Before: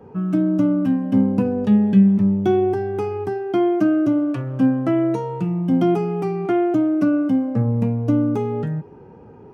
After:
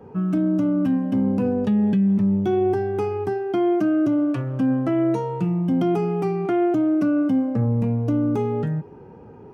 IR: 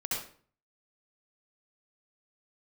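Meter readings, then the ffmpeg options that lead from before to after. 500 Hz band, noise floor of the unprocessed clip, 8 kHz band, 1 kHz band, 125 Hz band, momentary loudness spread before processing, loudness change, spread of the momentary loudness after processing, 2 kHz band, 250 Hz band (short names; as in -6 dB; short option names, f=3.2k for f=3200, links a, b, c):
-1.5 dB, -44 dBFS, n/a, -1.5 dB, -2.0 dB, 8 LU, -2.0 dB, 5 LU, -2.0 dB, -2.5 dB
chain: -af "alimiter=limit=-14dB:level=0:latency=1:release=12"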